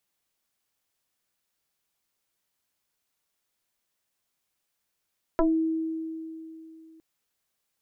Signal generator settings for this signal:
two-operator FM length 1.61 s, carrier 322 Hz, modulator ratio 1.04, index 3, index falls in 0.21 s exponential, decay 3.00 s, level −18 dB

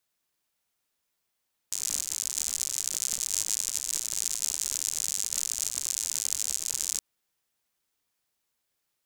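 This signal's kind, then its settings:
rain-like ticks over hiss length 5.27 s, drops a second 95, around 7,000 Hz, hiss −26 dB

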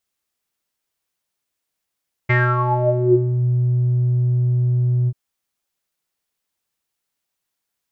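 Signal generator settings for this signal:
subtractive voice square B2 12 dB per octave, low-pass 190 Hz, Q 11, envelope 3.5 octaves, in 1.15 s, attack 13 ms, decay 0.27 s, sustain −5 dB, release 0.05 s, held 2.79 s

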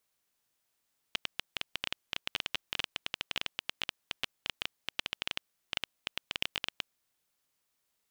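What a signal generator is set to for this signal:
Geiger counter clicks 12 per second −13.5 dBFS 5.81 s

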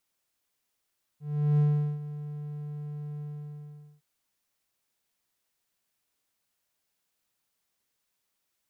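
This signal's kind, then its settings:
note with an ADSR envelope triangle 148 Hz, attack 386 ms, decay 401 ms, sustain −15.5 dB, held 2.01 s, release 802 ms −17 dBFS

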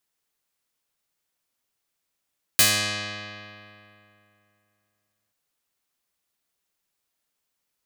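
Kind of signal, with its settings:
Karplus-Strong string G#2, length 2.73 s, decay 2.77 s, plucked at 0.23, medium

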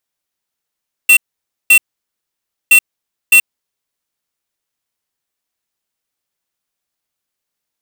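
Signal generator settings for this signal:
beeps in groups square 2,710 Hz, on 0.08 s, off 0.53 s, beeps 2, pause 0.93 s, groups 2, −6 dBFS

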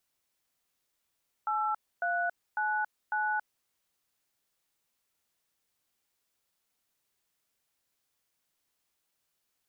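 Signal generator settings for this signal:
touch tones "8399", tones 277 ms, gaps 273 ms, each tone −30 dBFS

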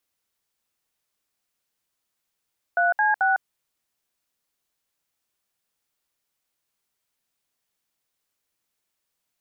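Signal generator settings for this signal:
touch tones "3C6", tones 154 ms, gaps 65 ms, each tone −20 dBFS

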